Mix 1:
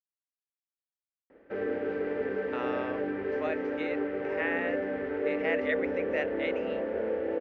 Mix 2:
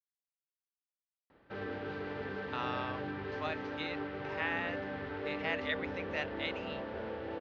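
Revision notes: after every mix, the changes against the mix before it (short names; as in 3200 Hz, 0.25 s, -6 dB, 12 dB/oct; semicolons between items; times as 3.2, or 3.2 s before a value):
master: add graphic EQ 125/250/500/1000/2000/4000 Hz +10/-7/-12/+5/-7/+11 dB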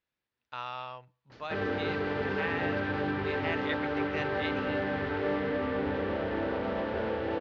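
speech: entry -2.00 s; background +8.5 dB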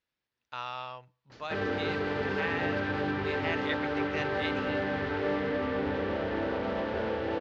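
master: remove air absorption 89 m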